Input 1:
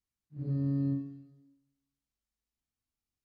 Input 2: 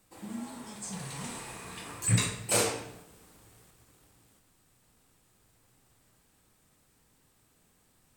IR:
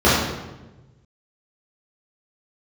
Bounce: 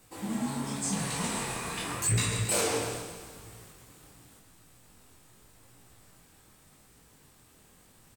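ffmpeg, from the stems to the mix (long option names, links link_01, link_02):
-filter_complex "[0:a]volume=-9.5dB[link_01];[1:a]aeval=exprs='0.237*sin(PI/2*2*val(0)/0.237)':channel_layout=same,flanger=delay=17.5:depth=7.9:speed=0.86,volume=1dB,asplit=2[link_02][link_03];[link_03]volume=-13.5dB,aecho=0:1:137|274|411|548|685|822|959|1096:1|0.55|0.303|0.166|0.0915|0.0503|0.0277|0.0152[link_04];[link_01][link_02][link_04]amix=inputs=3:normalize=0,alimiter=limit=-19.5dB:level=0:latency=1:release=115"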